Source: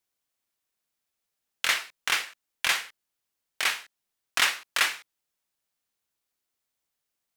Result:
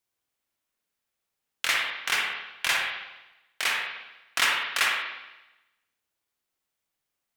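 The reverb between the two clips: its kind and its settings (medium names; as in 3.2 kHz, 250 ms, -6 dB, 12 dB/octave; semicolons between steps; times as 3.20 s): spring tank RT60 1 s, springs 50/59 ms, chirp 70 ms, DRR -0.5 dB; trim -1.5 dB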